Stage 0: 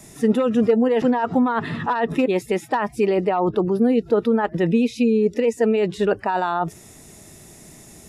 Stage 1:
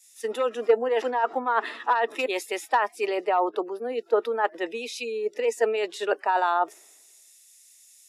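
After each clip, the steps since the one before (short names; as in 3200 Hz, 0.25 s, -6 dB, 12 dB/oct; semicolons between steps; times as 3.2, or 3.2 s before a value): Bessel high-pass 570 Hz, order 8; three-band expander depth 100%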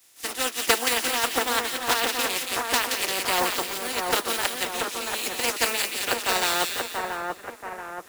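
spectral contrast lowered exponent 0.25; notch comb 210 Hz; on a send: split-band echo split 1900 Hz, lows 0.682 s, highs 0.174 s, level -3.5 dB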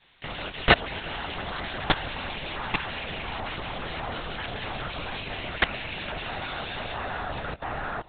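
echo with dull and thin repeats by turns 0.353 s, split 960 Hz, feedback 55%, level -10.5 dB; level quantiser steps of 20 dB; LPC vocoder at 8 kHz whisper; gain +8 dB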